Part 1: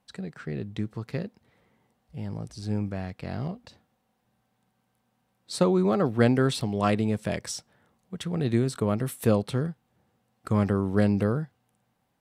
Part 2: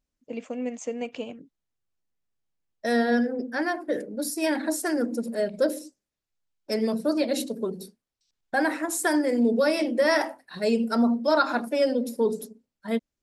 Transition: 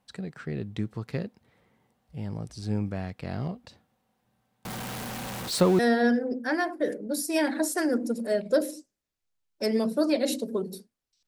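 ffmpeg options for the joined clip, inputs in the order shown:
ffmpeg -i cue0.wav -i cue1.wav -filter_complex "[0:a]asettb=1/sr,asplit=3[link_01][link_02][link_03];[link_01]atrim=end=4.654[link_04];[link_02]atrim=start=4.65:end=5.79,asetpts=PTS-STARTPTS,afade=type=in:duration=0.004:curve=qsin,afade=type=out:start_time=1.136:duration=0.004:curve=qsin,aeval=exprs='val(0)+0.5*0.0335*sgn(val(0))':channel_layout=same[link_05];[link_03]atrim=start=5.786[link_06];[link_04][link_05]acrossfade=duration=0.004:curve1=hsin:curve2=qsin[link_07];[link_07][link_06]acrossfade=duration=0.004:curve1=qsin:curve2=hsin,apad=whole_dur=11.27,atrim=end=11.27,atrim=end=5.792[link_08];[1:a]atrim=start=2.868:end=8.35[link_09];[link_08][link_09]acrossfade=duration=0.004:curve1=hsin:curve2=hsin" out.wav

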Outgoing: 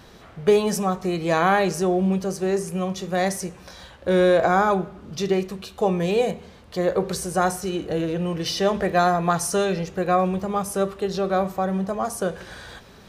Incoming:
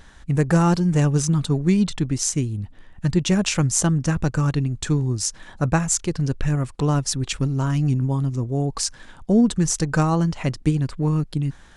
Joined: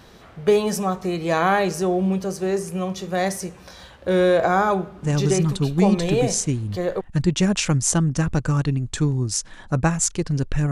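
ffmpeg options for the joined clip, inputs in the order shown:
ffmpeg -i cue0.wav -i cue1.wav -filter_complex "[0:a]apad=whole_dur=10.71,atrim=end=10.71,atrim=end=7.01,asetpts=PTS-STARTPTS[link_01];[1:a]atrim=start=0.92:end=6.6,asetpts=PTS-STARTPTS[link_02];[link_01][link_02]acrossfade=duration=1.98:curve1=log:curve2=log" out.wav

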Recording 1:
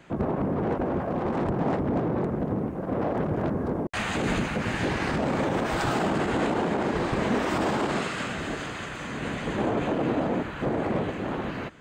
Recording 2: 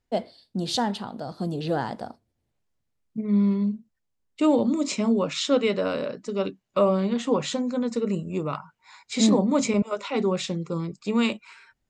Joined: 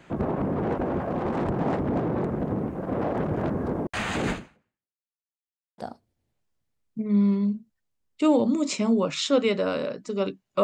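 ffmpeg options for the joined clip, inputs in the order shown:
ffmpeg -i cue0.wav -i cue1.wav -filter_complex "[0:a]apad=whole_dur=10.63,atrim=end=10.63,asplit=2[link_01][link_02];[link_01]atrim=end=5.02,asetpts=PTS-STARTPTS,afade=type=out:start_time=4.3:duration=0.72:curve=exp[link_03];[link_02]atrim=start=5.02:end=5.78,asetpts=PTS-STARTPTS,volume=0[link_04];[1:a]atrim=start=1.97:end=6.82,asetpts=PTS-STARTPTS,afade=type=in:duration=0.004:curve=hsin[link_05];[link_03][link_04][link_05]concat=n=3:v=0:a=1" out.wav

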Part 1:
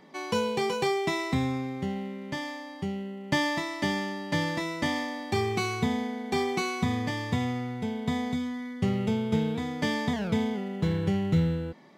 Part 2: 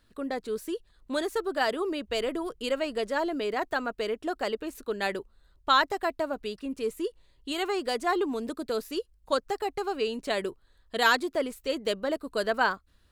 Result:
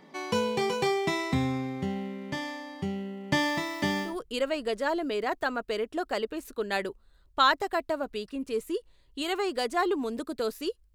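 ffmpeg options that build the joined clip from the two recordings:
ffmpeg -i cue0.wav -i cue1.wav -filter_complex "[0:a]asettb=1/sr,asplit=3[link_01][link_02][link_03];[link_01]atrim=end=3.384[link_04];[link_02]atrim=start=3.38:end=4.17,asetpts=PTS-STARTPTS,afade=type=in:duration=0.004:curve=qsin,afade=type=out:start_time=0.786:duration=0.004:curve=qsin,acrusher=bits=9:dc=4:mix=0:aa=0.000001[link_05];[link_03]atrim=start=4.166[link_06];[link_04][link_05]acrossfade=duration=0.004:curve1=hsin:curve2=qsin[link_07];[link_07][link_06]acrossfade=duration=0.004:curve1=qsin:curve2=hsin,apad=whole_dur=10.94,atrim=end=10.94,atrim=end=4.17,asetpts=PTS-STARTPTS[link_08];[1:a]atrim=start=2.31:end=9.24,asetpts=PTS-STARTPTS[link_09];[link_08][link_09]acrossfade=duration=0.16:curve1=tri:curve2=tri" out.wav

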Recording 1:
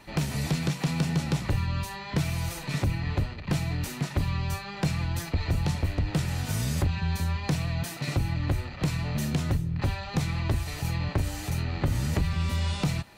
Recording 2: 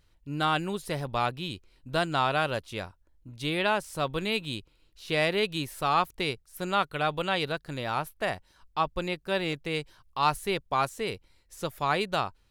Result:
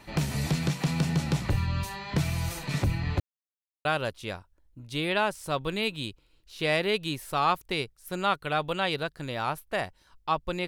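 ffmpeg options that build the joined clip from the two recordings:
ffmpeg -i cue0.wav -i cue1.wav -filter_complex "[0:a]apad=whole_dur=10.67,atrim=end=10.67,asplit=2[link_01][link_02];[link_01]atrim=end=3.2,asetpts=PTS-STARTPTS,afade=type=out:start_time=3.196:duration=0.004:curve=hsin[link_03];[link_02]atrim=start=3.2:end=3.85,asetpts=PTS-STARTPTS,volume=0[link_04];[1:a]atrim=start=2.34:end=9.16,asetpts=PTS-STARTPTS,afade=type=in:duration=0.004:curve=hsin[link_05];[link_03][link_04][link_05]concat=n=3:v=0:a=1" out.wav

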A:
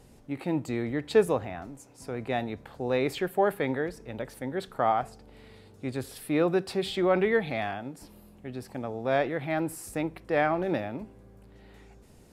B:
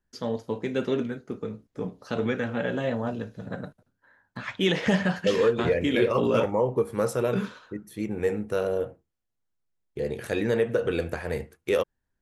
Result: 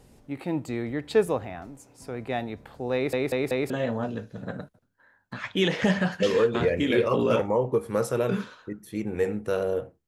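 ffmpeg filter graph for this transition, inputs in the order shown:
ffmpeg -i cue0.wav -i cue1.wav -filter_complex "[0:a]apad=whole_dur=10.07,atrim=end=10.07,asplit=4[link_01][link_02][link_03][link_04];[link_01]atrim=end=3.132[link_05];[link_02]atrim=start=2.938:end=3.132[link_06];[link_03]atrim=start=2.938:end=3.132[link_07];[link_04]atrim=start=2.938:end=3.132[link_08];[1:a]atrim=start=2.738:end=9.11[link_09];[link_05][link_06]acrossfade=duration=0.004:curve1=hsin:curve2=hsin[link_10];[link_10][link_07]acrossfade=duration=0.004:curve1=hsin:curve2=hsin[link_11];[link_11][link_08]acrossfade=duration=0.004:curve1=hsin:curve2=hsin[link_12];[link_12][link_09]acrossfade=duration=0.004:curve1=hsin:curve2=hsin" out.wav

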